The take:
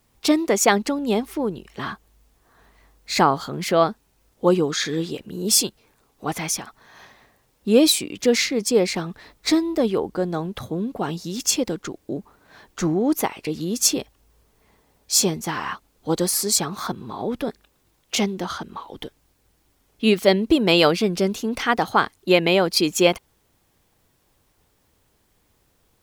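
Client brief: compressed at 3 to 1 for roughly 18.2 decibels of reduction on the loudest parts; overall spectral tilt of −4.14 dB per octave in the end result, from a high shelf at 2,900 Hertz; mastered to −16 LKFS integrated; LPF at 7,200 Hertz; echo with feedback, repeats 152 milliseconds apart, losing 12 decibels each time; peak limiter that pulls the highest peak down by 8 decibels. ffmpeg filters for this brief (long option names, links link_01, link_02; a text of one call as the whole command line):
ffmpeg -i in.wav -af "lowpass=7200,highshelf=frequency=2900:gain=-4,acompressor=threshold=-37dB:ratio=3,alimiter=level_in=4.5dB:limit=-24dB:level=0:latency=1,volume=-4.5dB,aecho=1:1:152|304|456:0.251|0.0628|0.0157,volume=23dB" out.wav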